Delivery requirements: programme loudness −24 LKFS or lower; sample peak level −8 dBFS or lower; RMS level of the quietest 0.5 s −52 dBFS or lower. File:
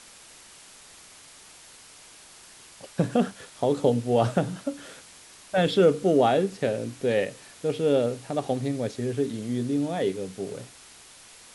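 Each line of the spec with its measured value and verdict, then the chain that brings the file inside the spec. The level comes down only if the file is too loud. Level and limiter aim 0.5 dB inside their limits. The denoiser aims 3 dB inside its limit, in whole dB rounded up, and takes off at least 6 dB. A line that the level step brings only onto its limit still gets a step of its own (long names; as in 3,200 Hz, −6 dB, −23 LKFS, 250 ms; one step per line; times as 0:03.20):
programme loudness −26.0 LKFS: in spec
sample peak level −9.0 dBFS: in spec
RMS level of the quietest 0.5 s −50 dBFS: out of spec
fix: broadband denoise 6 dB, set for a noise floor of −50 dBFS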